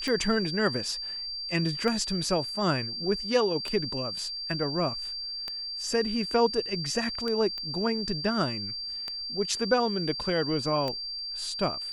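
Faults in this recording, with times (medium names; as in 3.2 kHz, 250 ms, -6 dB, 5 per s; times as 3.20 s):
tick 33 1/3 rpm -18 dBFS
whine 4.7 kHz -33 dBFS
7.58 s: pop -23 dBFS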